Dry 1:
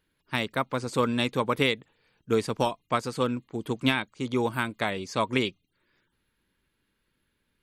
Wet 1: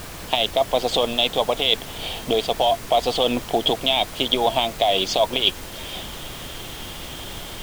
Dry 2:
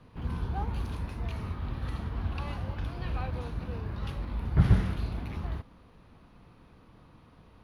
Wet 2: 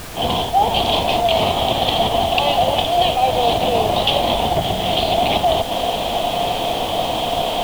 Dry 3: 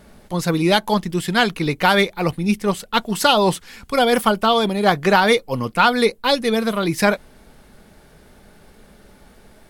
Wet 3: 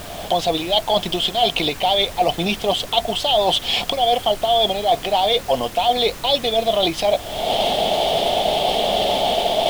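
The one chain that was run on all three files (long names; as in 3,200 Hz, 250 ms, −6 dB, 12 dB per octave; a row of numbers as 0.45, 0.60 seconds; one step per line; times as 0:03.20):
camcorder AGC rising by 75 dB per second
pair of resonant band-passes 1,500 Hz, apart 2.2 octaves
reversed playback
downward compressor, threshold −35 dBFS
reversed playback
background noise pink −54 dBFS
normalise the peak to −3 dBFS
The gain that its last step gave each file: +19.0, +22.0, +19.0 decibels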